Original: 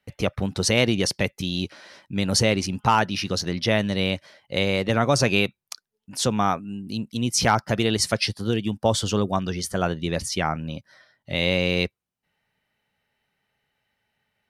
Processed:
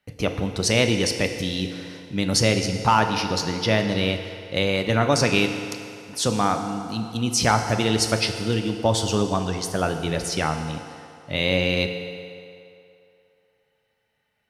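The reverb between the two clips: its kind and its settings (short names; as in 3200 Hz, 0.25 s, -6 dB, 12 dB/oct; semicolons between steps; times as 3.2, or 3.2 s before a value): FDN reverb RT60 2.7 s, low-frequency decay 0.7×, high-frequency decay 0.75×, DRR 5.5 dB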